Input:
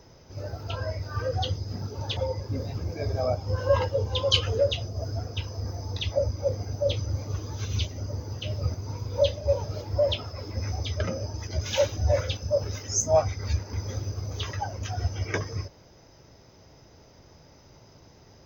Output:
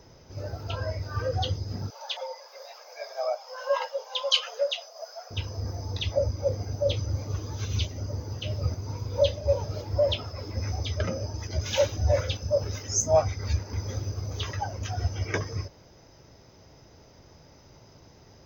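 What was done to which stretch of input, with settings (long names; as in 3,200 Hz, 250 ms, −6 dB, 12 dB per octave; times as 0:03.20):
0:01.90–0:05.31: Butterworth high-pass 570 Hz 48 dB per octave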